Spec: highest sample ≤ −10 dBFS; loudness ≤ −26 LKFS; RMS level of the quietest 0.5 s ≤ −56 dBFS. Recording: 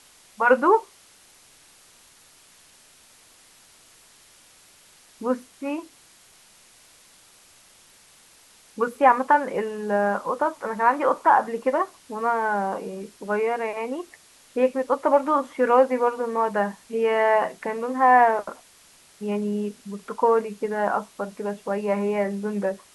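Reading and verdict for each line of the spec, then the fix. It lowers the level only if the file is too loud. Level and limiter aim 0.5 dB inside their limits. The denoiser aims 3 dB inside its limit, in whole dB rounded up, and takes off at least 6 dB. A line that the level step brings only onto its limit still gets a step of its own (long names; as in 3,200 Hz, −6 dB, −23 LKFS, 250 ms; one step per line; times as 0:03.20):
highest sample −5.0 dBFS: out of spec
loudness −23.0 LKFS: out of spec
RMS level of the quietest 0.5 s −54 dBFS: out of spec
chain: level −3.5 dB
brickwall limiter −10.5 dBFS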